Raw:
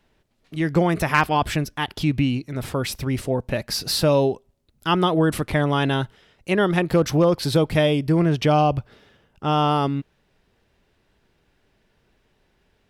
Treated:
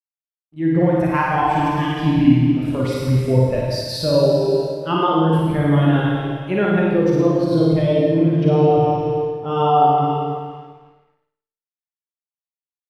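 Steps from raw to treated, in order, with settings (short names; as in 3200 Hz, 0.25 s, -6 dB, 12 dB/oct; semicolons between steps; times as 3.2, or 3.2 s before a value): Schroeder reverb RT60 2.6 s, combs from 31 ms, DRR -3.5 dB; crossover distortion -42 dBFS; on a send: flutter echo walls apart 9.5 m, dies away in 0.85 s; on the sum: vocal rider within 3 dB 0.5 s; spectral expander 1.5:1; gain -1 dB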